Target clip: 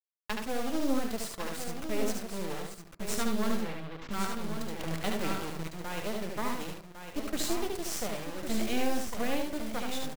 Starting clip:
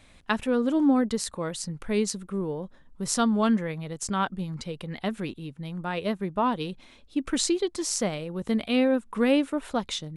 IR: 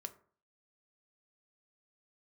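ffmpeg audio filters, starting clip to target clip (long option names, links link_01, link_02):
-filter_complex "[0:a]asettb=1/sr,asplit=3[link_01][link_02][link_03];[link_01]atrim=end=8.464[link_04];[link_02]atrim=start=8.46:end=9.14,asetpts=PTS-STARTPTS,afade=type=in:duration=0.004:curve=qsin,afade=type=out:start_time=0.676:duration=0.004:curve=qsin,aeval=exprs='val(0)+0.5*0.0376*sgn(val(0))':channel_layout=same[link_05];[link_03]atrim=start=9.136[link_06];[link_04][link_05]acrossfade=duration=0.004:curve1=hsin:curve2=qsin[link_07];[link_07][link_06]acrossfade=duration=0.004:curve1=qsin:curve2=hsin,flanger=delay=8:depth=1.7:regen=-75:speed=0.23:shape=triangular,aeval=exprs='max(val(0),0)':channel_layout=same,acrossover=split=480|3000[link_08][link_09][link_10];[link_09]acompressor=threshold=-34dB:ratio=6[link_11];[link_08][link_11][link_10]amix=inputs=3:normalize=0,acrusher=bits=6:mix=0:aa=0.000001,asettb=1/sr,asplit=3[link_12][link_13][link_14];[link_12]atrim=end=3.614[link_15];[link_13]atrim=start=3.61:end=4.11,asetpts=PTS-STARTPTS,afade=type=in:duration=0.004:curve=qsin,afade=type=out:start_time=0.496:duration=0.004:curve=qsin,lowpass=frequency=4000:width=0.5412,lowpass=frequency=4000:width=1.3066[link_16];[link_14]atrim=start=4.106[link_17];[link_15][link_16]acrossfade=duration=0.004:curve1=hsin:curve2=qsin[link_18];[link_18][link_17]acrossfade=duration=0.004:curve1=qsin:curve2=hsin,asplit=2[link_19][link_20];[1:a]atrim=start_sample=2205,adelay=73[link_21];[link_20][link_21]afir=irnorm=-1:irlink=0,volume=0.5dB[link_22];[link_19][link_22]amix=inputs=2:normalize=0,acrusher=bits=8:mode=log:mix=0:aa=0.000001,aecho=1:1:1104:0.398,asettb=1/sr,asplit=3[link_23][link_24][link_25];[link_23]atrim=end=4.794[link_26];[link_24]atrim=start=4.79:end=5.68,asetpts=PTS-STARTPTS,afade=type=in:duration=0.004:curve=qsin,afade=type=out:start_time=0.886:duration=0.004:curve=qsin,acontrast=28[link_27];[link_25]atrim=start=5.676[link_28];[link_26][link_27]acrossfade=duration=0.004:curve1=hsin:curve2=qsin[link_29];[link_29][link_28]acrossfade=duration=0.004:curve1=qsin:curve2=hsin"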